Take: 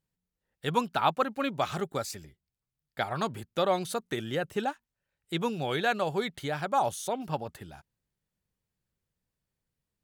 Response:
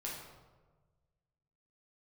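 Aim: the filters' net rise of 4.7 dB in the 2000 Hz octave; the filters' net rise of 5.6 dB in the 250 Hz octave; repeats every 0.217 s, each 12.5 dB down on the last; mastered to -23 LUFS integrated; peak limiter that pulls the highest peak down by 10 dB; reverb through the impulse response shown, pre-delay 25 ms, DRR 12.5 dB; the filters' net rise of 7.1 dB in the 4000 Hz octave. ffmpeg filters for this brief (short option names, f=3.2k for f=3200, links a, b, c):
-filter_complex "[0:a]equalizer=f=250:t=o:g=7,equalizer=f=2k:t=o:g=4.5,equalizer=f=4k:t=o:g=7,alimiter=limit=-18dB:level=0:latency=1,aecho=1:1:217|434|651:0.237|0.0569|0.0137,asplit=2[a][b];[1:a]atrim=start_sample=2205,adelay=25[c];[b][c]afir=irnorm=-1:irlink=0,volume=-13dB[d];[a][d]amix=inputs=2:normalize=0,volume=7dB"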